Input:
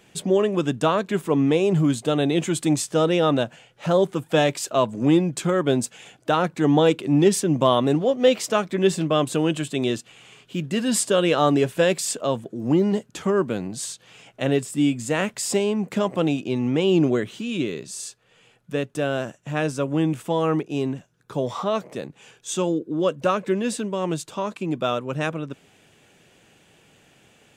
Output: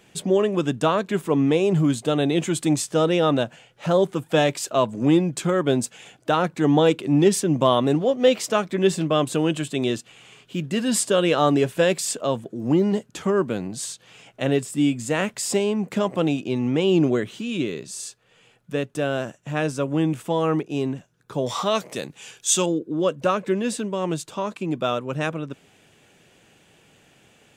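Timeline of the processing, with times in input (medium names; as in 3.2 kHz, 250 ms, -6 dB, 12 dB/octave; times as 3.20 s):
21.46–22.66 s: treble shelf 2.2 kHz +12 dB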